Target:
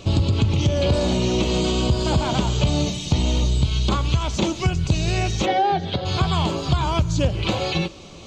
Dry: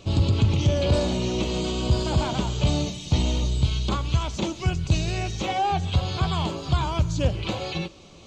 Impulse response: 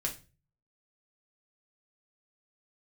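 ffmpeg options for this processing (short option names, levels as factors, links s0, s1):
-filter_complex "[0:a]acompressor=threshold=0.0708:ratio=4,asplit=3[s0][s1][s2];[s0]afade=t=out:st=5.45:d=0.02[s3];[s1]highpass=160,equalizer=f=360:t=q:w=4:g=5,equalizer=f=570:t=q:w=4:g=5,equalizer=f=1100:t=q:w=4:g=-9,equalizer=f=1800:t=q:w=4:g=5,equalizer=f=2600:t=q:w=4:g=-9,lowpass=f=4700:w=0.5412,lowpass=f=4700:w=1.3066,afade=t=in:st=5.45:d=0.02,afade=t=out:st=6.04:d=0.02[s4];[s2]afade=t=in:st=6.04:d=0.02[s5];[s3][s4][s5]amix=inputs=3:normalize=0,volume=2.24"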